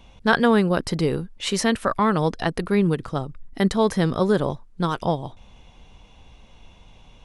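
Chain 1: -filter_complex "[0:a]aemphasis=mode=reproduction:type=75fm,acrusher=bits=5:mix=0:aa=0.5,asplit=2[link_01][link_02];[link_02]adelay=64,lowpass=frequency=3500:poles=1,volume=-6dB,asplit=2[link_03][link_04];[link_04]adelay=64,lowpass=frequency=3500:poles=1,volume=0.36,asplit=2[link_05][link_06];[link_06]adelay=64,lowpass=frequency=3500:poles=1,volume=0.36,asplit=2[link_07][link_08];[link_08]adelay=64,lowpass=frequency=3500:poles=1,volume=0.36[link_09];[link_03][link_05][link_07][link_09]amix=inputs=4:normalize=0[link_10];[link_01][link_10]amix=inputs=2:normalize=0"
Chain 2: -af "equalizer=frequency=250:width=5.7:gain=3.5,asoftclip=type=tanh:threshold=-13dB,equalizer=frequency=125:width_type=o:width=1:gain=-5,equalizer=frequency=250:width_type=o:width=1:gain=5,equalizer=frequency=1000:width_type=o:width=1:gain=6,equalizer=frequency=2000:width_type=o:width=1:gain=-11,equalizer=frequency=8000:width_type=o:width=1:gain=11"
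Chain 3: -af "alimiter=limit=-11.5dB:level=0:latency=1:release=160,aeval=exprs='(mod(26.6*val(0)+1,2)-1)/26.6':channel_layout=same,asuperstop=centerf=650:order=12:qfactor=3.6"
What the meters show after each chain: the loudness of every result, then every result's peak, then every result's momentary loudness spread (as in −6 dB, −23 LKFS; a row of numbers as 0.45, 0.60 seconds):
−21.0, −22.0, −33.0 LKFS; −2.0, −6.0, −20.5 dBFS; 10, 9, 20 LU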